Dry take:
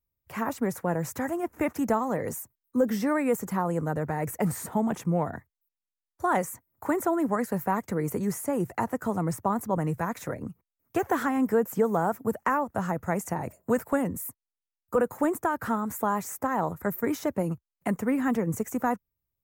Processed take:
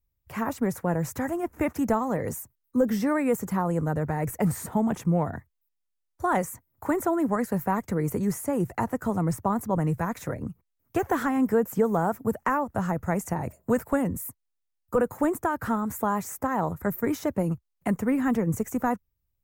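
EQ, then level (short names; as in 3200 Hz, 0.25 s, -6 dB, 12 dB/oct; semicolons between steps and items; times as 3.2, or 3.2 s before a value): low shelf 72 Hz +8 dB; low shelf 150 Hz +4.5 dB; 0.0 dB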